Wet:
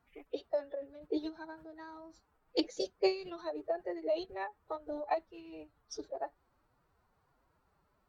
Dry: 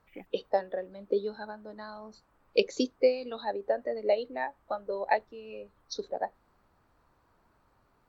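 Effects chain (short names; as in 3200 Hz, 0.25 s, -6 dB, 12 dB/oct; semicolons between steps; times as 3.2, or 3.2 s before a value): formant-preserving pitch shift +7 st; gain -5.5 dB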